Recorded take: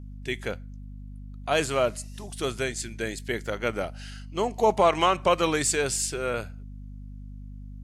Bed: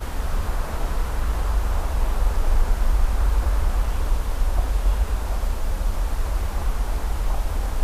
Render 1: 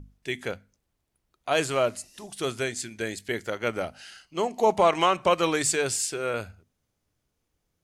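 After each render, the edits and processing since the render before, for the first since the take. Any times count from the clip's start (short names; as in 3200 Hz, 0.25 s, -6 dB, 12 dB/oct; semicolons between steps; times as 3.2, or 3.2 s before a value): notches 50/100/150/200/250 Hz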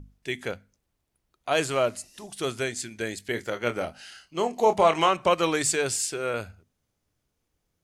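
3.32–5.09 doubler 25 ms -9 dB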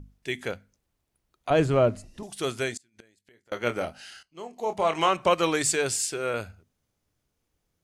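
1.5–2.23 tilt -4 dB/oct; 2.77–3.52 flipped gate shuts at -30 dBFS, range -30 dB; 4.23–5.14 fade in quadratic, from -15 dB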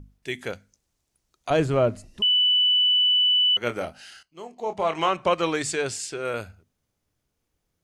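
0.53–1.57 bell 6400 Hz +9.5 dB 1.3 oct; 2.22–3.57 bleep 2980 Hz -16.5 dBFS; 4.53–6.25 air absorption 56 m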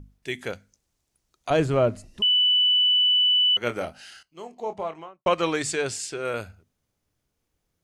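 4.46–5.26 studio fade out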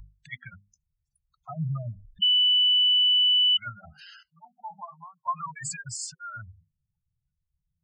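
spectral gate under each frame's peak -10 dB strong; elliptic band-stop 170–910 Hz, stop band 50 dB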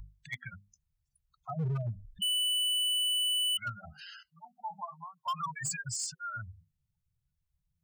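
hard clip -29 dBFS, distortion -7 dB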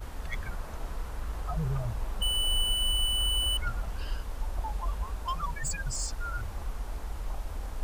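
add bed -12 dB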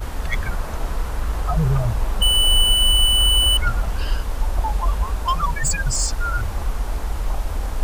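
gain +12 dB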